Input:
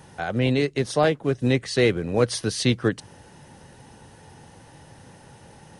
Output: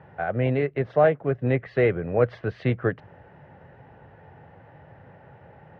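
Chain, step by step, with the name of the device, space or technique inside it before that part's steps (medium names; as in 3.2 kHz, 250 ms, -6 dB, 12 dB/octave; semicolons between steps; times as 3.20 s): bass cabinet (cabinet simulation 62–2100 Hz, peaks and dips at 220 Hz -7 dB, 310 Hz -6 dB, 640 Hz +5 dB, 980 Hz -4 dB)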